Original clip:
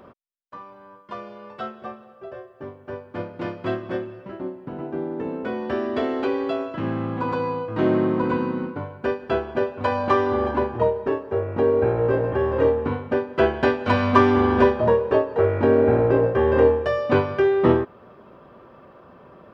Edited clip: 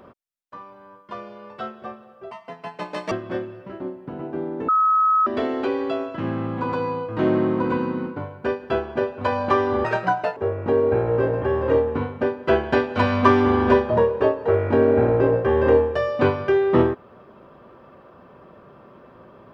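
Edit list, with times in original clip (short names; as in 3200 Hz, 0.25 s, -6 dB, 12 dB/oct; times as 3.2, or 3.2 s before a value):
2.31–3.71 speed 174%
5.28–5.86 bleep 1280 Hz -14.5 dBFS
10.44–11.27 speed 159%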